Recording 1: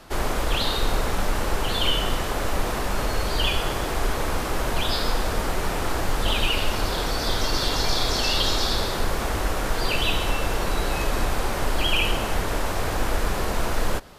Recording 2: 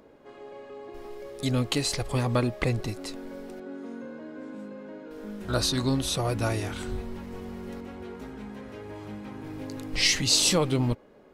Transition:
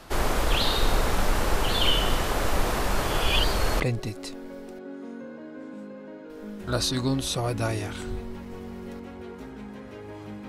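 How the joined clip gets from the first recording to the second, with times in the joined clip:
recording 1
3.03–3.8 reverse
3.8 switch to recording 2 from 2.61 s

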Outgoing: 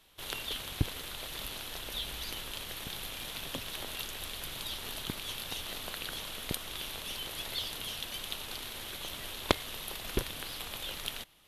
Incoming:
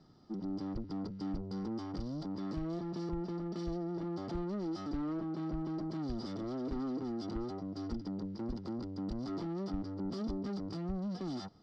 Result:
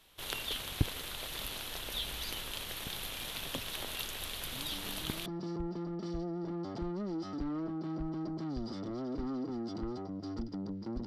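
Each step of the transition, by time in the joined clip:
outgoing
4.52 add incoming from 2.05 s 0.74 s -10 dB
5.26 switch to incoming from 2.79 s

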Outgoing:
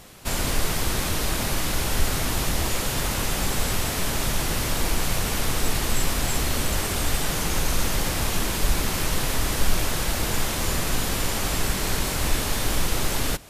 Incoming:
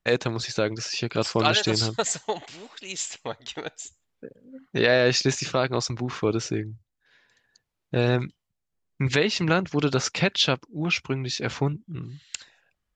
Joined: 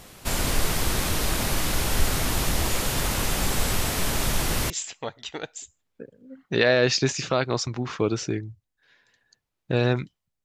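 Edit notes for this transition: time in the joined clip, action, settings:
outgoing
4.7 switch to incoming from 2.93 s

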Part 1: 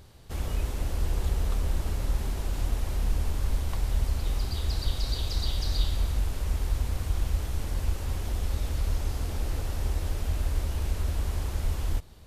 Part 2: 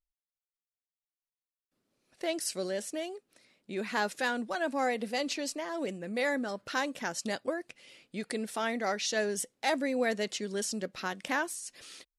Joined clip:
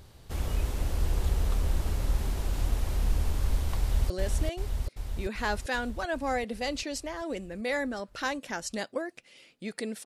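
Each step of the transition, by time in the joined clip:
part 1
3.79–4.1 echo throw 0.39 s, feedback 70%, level -2 dB
4.1 switch to part 2 from 2.62 s

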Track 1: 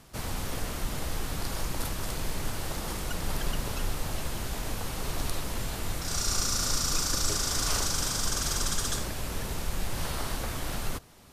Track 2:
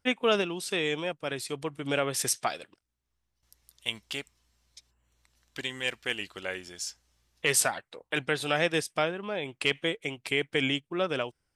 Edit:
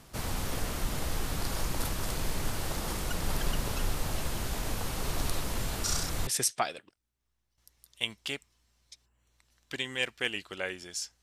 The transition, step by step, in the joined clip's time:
track 1
5.84–6.27 reverse
6.27 switch to track 2 from 2.12 s

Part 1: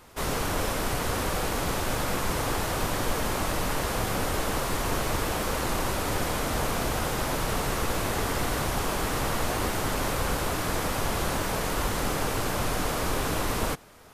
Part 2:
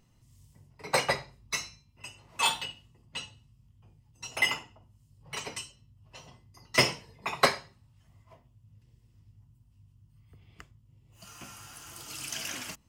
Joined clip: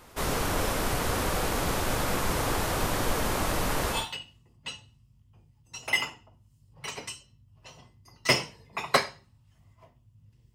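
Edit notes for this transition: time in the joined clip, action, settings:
part 1
3.98 switch to part 2 from 2.47 s, crossfade 0.18 s

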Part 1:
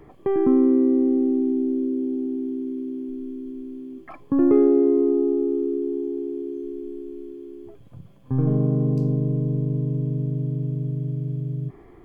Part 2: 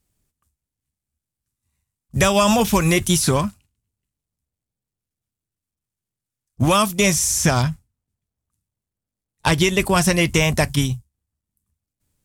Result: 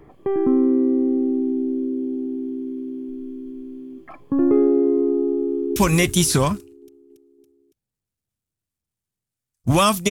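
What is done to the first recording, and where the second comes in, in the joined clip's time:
part 1
5.42–5.76 echo throw 0.28 s, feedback 60%, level -10 dB
5.76 switch to part 2 from 2.69 s

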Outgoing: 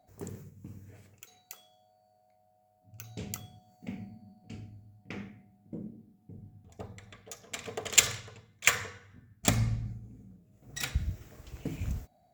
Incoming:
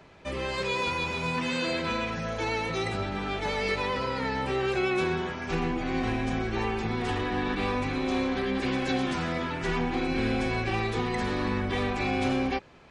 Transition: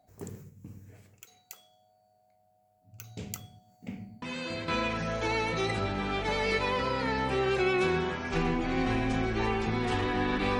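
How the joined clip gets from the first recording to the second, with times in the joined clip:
outgoing
4.22 add incoming from 1.39 s 0.46 s -7.5 dB
4.68 switch to incoming from 1.85 s

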